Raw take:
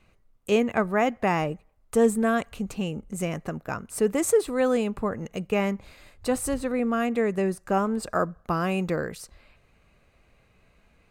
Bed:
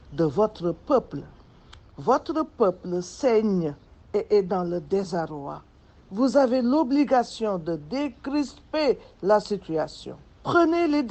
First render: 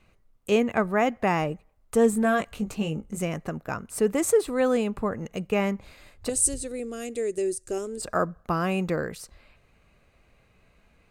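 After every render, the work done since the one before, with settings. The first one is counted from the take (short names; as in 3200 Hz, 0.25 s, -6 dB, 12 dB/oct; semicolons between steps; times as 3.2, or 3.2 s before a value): 2.11–3.19 doubler 19 ms -6 dB; 6.29–8.02 EQ curve 110 Hz 0 dB, 190 Hz -17 dB, 370 Hz +2 dB, 570 Hz -9 dB, 980 Hz -21 dB, 8900 Hz +13 dB, 14000 Hz -6 dB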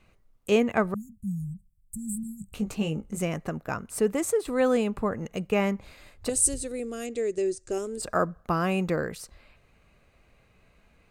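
0.94–2.54 Chebyshev band-stop 200–7700 Hz, order 5; 3.92–4.45 fade out, to -6.5 dB; 7.06–7.71 LPF 7300 Hz 24 dB/oct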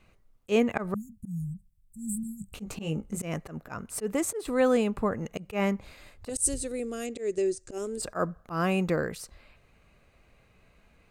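auto swell 0.112 s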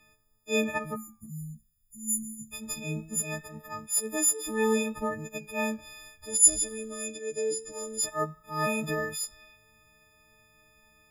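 frequency quantiser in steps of 6 st; flange 0.2 Hz, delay 8.4 ms, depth 5.3 ms, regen +87%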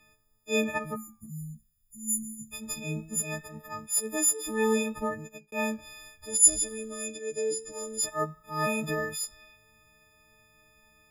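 5.1–5.52 fade out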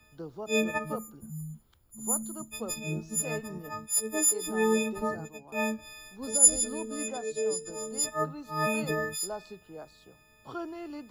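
add bed -18.5 dB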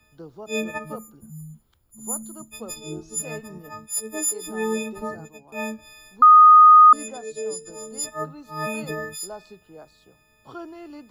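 2.76–3.19 comb 2.6 ms, depth 95%; 6.22–6.93 bleep 1240 Hz -6.5 dBFS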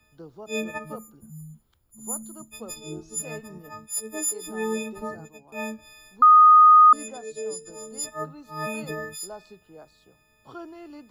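gain -2.5 dB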